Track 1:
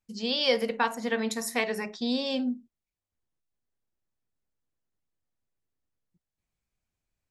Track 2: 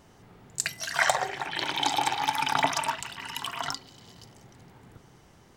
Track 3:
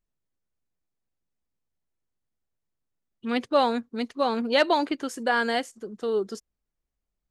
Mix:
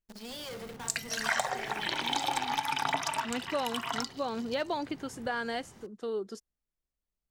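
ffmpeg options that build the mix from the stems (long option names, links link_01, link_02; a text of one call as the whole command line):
ffmpeg -i stem1.wav -i stem2.wav -i stem3.wav -filter_complex "[0:a]lowpass=7800,volume=30.5dB,asoftclip=hard,volume=-30.5dB,acrusher=bits=7:dc=4:mix=0:aa=0.000001,volume=-9.5dB[link_01];[1:a]adelay=300,volume=1dB[link_02];[2:a]deesser=0.7,volume=-6.5dB[link_03];[link_01][link_02][link_03]amix=inputs=3:normalize=0,acompressor=threshold=-31dB:ratio=2" out.wav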